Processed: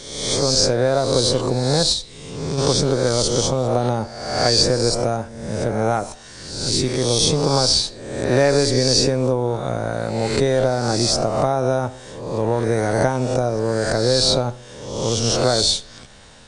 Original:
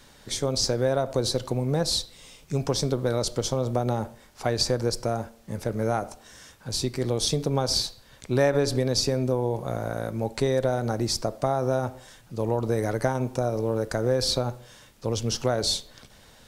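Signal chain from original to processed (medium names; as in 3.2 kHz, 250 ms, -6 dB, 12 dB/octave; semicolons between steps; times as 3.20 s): reverse spectral sustain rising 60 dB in 0.99 s; 1.92–2.58 s: compression, threshold -25 dBFS, peak gain reduction 6 dB; trim +5 dB; MP3 48 kbps 22.05 kHz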